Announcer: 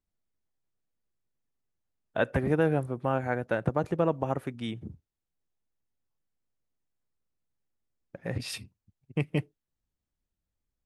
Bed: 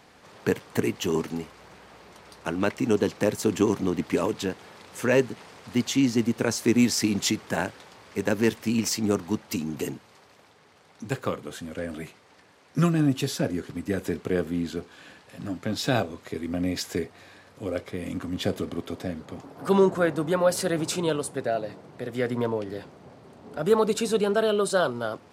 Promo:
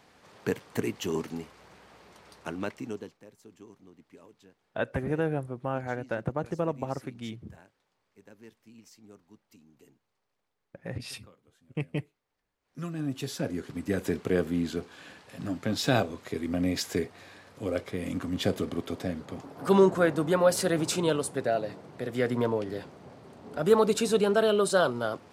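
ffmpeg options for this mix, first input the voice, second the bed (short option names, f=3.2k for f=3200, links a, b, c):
-filter_complex "[0:a]adelay=2600,volume=-3.5dB[a];[1:a]volume=23dB,afade=t=out:st=2.33:d=0.85:silence=0.0668344,afade=t=in:st=12.61:d=1.46:silence=0.0398107[b];[a][b]amix=inputs=2:normalize=0"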